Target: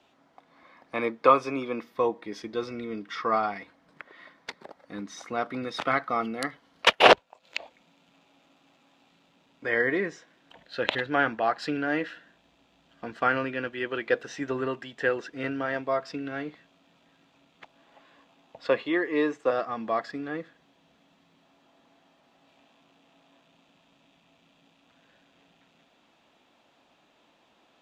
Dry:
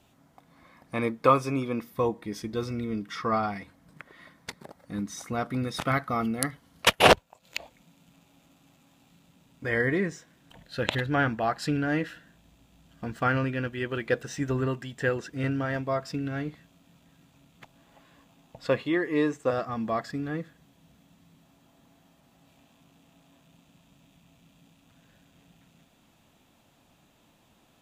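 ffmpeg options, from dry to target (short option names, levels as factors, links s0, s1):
-filter_complex "[0:a]acrossover=split=270 5500:gain=0.141 1 0.1[s0][s1][s2];[s0][s1][s2]amix=inputs=3:normalize=0,volume=1.26"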